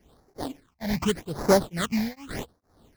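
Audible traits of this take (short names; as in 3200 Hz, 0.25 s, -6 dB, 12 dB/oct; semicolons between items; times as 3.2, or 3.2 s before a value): tremolo triangle 2.2 Hz, depth 100%; aliases and images of a low sample rate 2600 Hz, jitter 20%; phasing stages 8, 0.85 Hz, lowest notch 360–3100 Hz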